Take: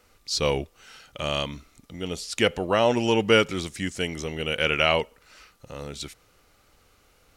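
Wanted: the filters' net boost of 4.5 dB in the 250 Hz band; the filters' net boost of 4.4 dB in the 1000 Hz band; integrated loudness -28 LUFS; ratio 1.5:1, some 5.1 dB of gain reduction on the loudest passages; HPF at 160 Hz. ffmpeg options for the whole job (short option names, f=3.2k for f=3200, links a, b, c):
-af "highpass=160,equalizer=f=250:t=o:g=6.5,equalizer=f=1k:t=o:g=5.5,acompressor=threshold=-24dB:ratio=1.5,volume=-2dB"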